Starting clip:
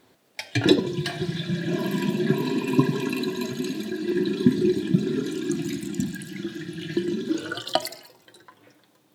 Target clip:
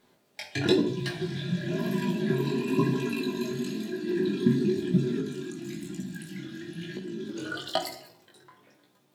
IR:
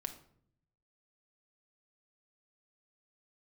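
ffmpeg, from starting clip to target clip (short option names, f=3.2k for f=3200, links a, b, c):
-filter_complex "[0:a]asplit=3[a][b][c];[a]afade=t=out:st=5.19:d=0.02[d];[b]acompressor=threshold=-29dB:ratio=4,afade=t=in:st=5.19:d=0.02,afade=t=out:st=7.35:d=0.02[e];[c]afade=t=in:st=7.35:d=0.02[f];[d][e][f]amix=inputs=3:normalize=0[g];[1:a]atrim=start_sample=2205[h];[g][h]afir=irnorm=-1:irlink=0,flanger=delay=16:depth=6:speed=1"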